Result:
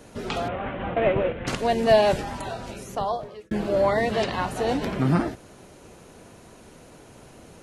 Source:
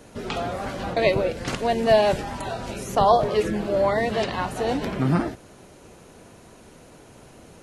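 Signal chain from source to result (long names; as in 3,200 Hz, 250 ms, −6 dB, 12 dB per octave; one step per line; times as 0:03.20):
0:00.48–0:01.47: variable-slope delta modulation 16 kbit/s
0:02.20–0:03.51: fade out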